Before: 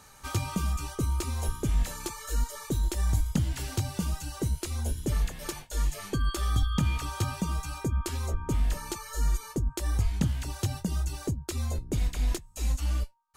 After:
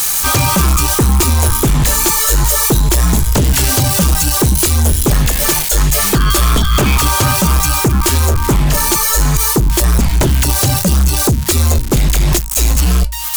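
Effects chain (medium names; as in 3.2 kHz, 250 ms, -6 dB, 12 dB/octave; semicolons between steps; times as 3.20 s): zero-crossing glitches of -30 dBFS; peaking EQ 94 Hz -7 dB 0.3 oct; de-hum 54.04 Hz, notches 4; sine folder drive 13 dB, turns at -13.5 dBFS; trim +6 dB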